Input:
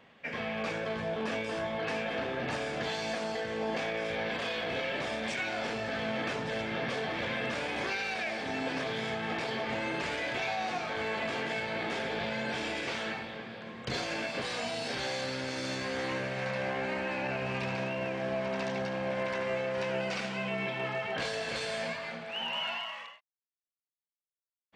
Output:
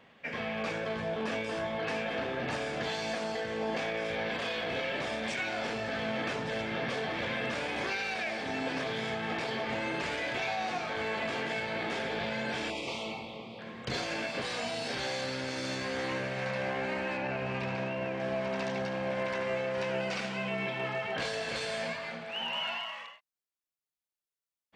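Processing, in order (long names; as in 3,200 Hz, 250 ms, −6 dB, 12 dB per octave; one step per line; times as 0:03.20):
0:12.70–0:13.59: Chebyshev band-stop filter 1,100–2,400 Hz, order 2
0:17.17–0:18.20: high-shelf EQ 4,500 Hz −8 dB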